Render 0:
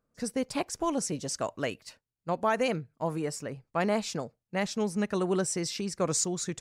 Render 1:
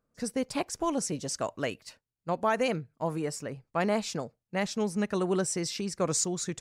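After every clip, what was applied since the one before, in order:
no processing that can be heard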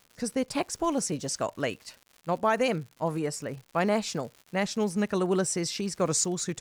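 surface crackle 160 per second −42 dBFS
level +2 dB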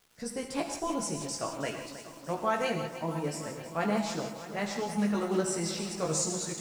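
multi-voice chorus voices 6, 0.41 Hz, delay 16 ms, depth 3.1 ms
reverb whose tail is shaped and stops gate 200 ms flat, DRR 4 dB
feedback echo at a low word length 318 ms, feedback 80%, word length 8 bits, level −12.5 dB
level −2 dB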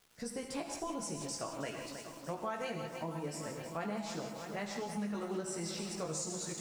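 downward compressor 3 to 1, threshold −36 dBFS, peak gain reduction 10 dB
level −1.5 dB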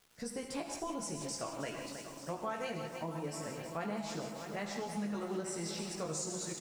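single-tap delay 884 ms −14 dB

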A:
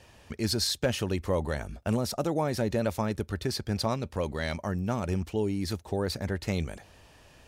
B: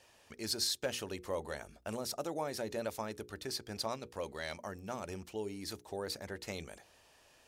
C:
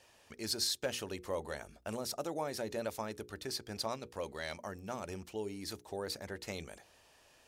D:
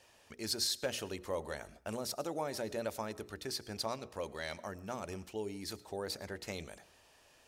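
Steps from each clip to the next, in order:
bass and treble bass −11 dB, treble +4 dB; mains-hum notches 60/120/180/240/300/360/420/480 Hz; level −7.5 dB
no processing that can be heard
convolution reverb RT60 0.55 s, pre-delay 60 ms, DRR 19.5 dB

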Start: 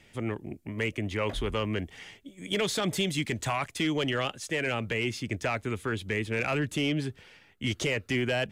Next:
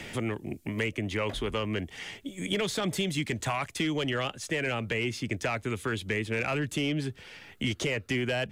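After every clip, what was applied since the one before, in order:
multiband upward and downward compressor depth 70%
level −1 dB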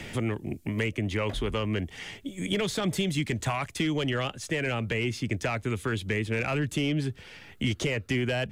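low-shelf EQ 190 Hz +6 dB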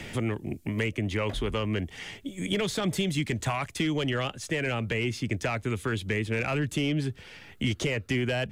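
no processing that can be heard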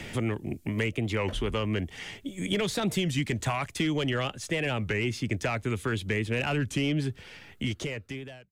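fade-out on the ending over 1.19 s
wow of a warped record 33 1/3 rpm, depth 160 cents

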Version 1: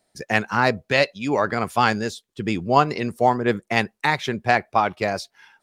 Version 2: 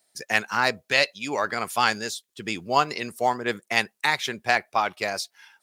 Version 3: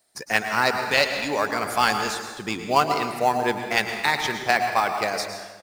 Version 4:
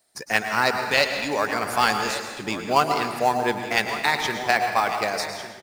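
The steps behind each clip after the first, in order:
spectral tilt +3 dB per octave; level −3.5 dB
single-tap delay 106 ms −17.5 dB; convolution reverb RT60 1.3 s, pre-delay 102 ms, DRR 6 dB; in parallel at −11.5 dB: decimation without filtering 13×
single-tap delay 1,152 ms −13.5 dB

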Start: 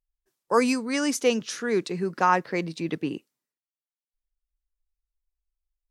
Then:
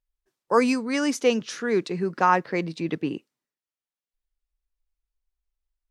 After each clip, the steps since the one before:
high-shelf EQ 7,600 Hz −11 dB
level +1.5 dB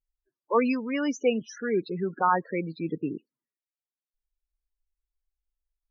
spectral peaks only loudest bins 16
level −3 dB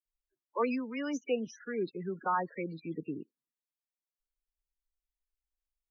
all-pass dispersion lows, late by 55 ms, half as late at 2,200 Hz
level −7.5 dB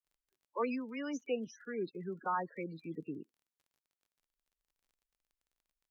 surface crackle 29 per second −56 dBFS
level −4 dB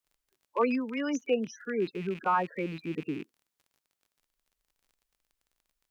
loose part that buzzes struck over −56 dBFS, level −44 dBFS
level +8 dB

